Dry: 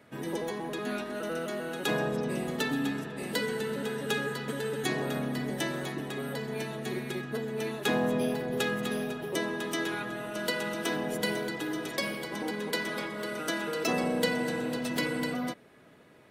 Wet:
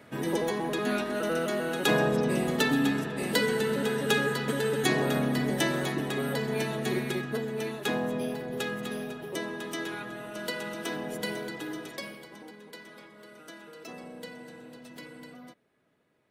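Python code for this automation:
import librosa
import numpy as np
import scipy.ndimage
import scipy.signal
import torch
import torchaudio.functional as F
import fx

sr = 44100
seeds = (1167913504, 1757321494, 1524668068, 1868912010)

y = fx.gain(x, sr, db=fx.line((6.98, 5.0), (8.07, -3.0), (11.71, -3.0), (12.6, -15.0)))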